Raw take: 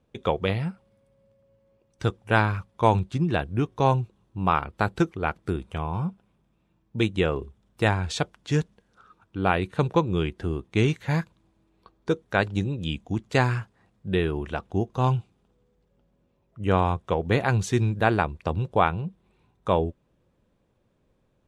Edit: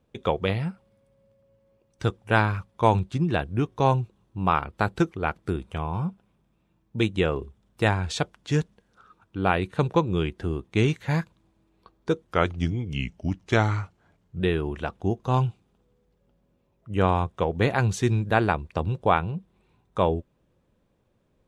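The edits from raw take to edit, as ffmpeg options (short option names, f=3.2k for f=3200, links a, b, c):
-filter_complex "[0:a]asplit=3[a][b][c];[a]atrim=end=12.264[d];[b]atrim=start=12.26:end=14.1,asetpts=PTS-STARTPTS,asetrate=37926,aresample=44100,atrim=end_sample=94353,asetpts=PTS-STARTPTS[e];[c]atrim=start=14.096[f];[d][e]acrossfade=d=0.004:c1=hsin:c2=hsin[g];[g][f]acrossfade=d=0.004:c1=hsin:c2=hsin"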